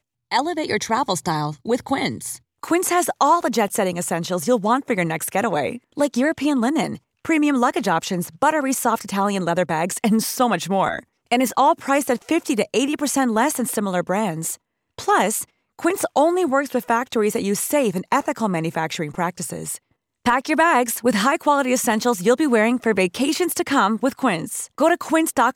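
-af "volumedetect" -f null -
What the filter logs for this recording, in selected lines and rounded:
mean_volume: -20.6 dB
max_volume: -5.5 dB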